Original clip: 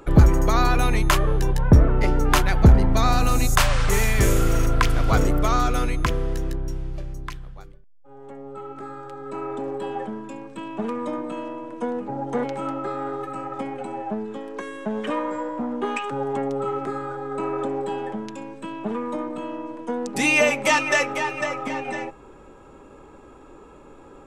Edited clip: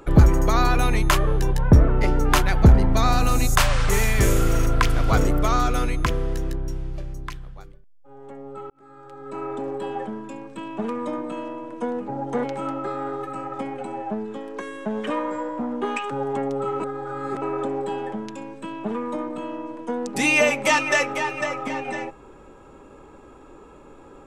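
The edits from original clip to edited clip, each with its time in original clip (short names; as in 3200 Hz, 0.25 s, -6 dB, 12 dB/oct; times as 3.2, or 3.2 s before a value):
8.7–9.43 fade in
16.8–17.42 reverse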